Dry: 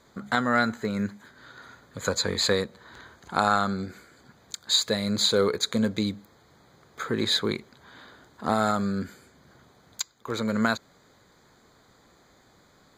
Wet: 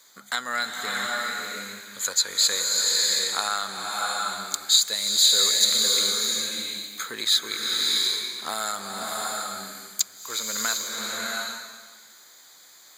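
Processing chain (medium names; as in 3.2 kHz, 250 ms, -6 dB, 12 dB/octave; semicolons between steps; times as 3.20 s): differentiator; in parallel at 0 dB: compression, threshold -43 dBFS, peak gain reduction 19 dB; on the sum: swelling reverb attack 710 ms, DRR -2 dB; trim +7.5 dB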